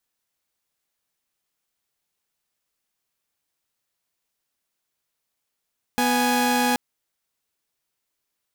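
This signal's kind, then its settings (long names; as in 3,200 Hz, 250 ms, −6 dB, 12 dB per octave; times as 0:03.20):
held notes B3/G#5 saw, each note −19 dBFS 0.78 s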